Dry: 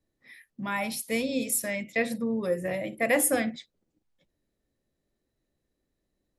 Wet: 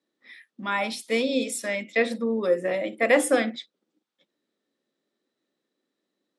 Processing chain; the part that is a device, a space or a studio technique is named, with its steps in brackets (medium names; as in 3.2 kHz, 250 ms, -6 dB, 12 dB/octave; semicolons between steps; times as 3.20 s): dynamic bell 510 Hz, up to +4 dB, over -35 dBFS, Q 0.85; television speaker (cabinet simulation 220–8400 Hz, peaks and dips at 670 Hz -3 dB, 1.3 kHz +5 dB, 3.5 kHz +6 dB, 6.8 kHz -4 dB); trim +2.5 dB